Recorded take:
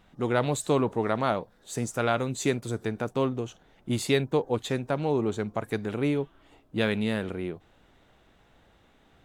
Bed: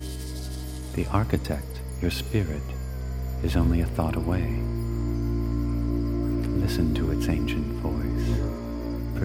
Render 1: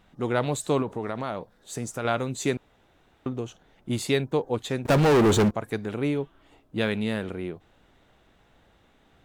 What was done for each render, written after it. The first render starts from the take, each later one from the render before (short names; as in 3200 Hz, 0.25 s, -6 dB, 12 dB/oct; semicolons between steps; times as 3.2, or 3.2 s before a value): 0.82–2.05 compressor 3:1, threshold -27 dBFS; 2.57–3.26 room tone; 4.85–5.51 sample leveller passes 5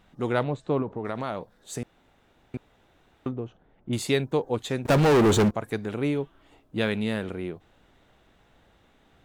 0.43–1.05 tape spacing loss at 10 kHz 34 dB; 1.83–2.54 room tone; 3.31–3.93 tape spacing loss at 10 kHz 39 dB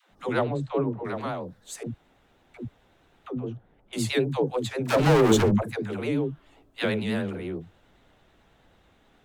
vibrato 9.3 Hz 83 cents; dispersion lows, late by 0.117 s, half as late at 360 Hz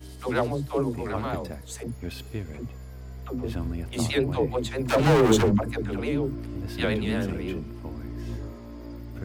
add bed -9 dB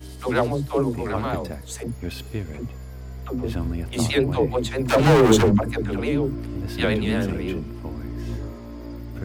gain +4 dB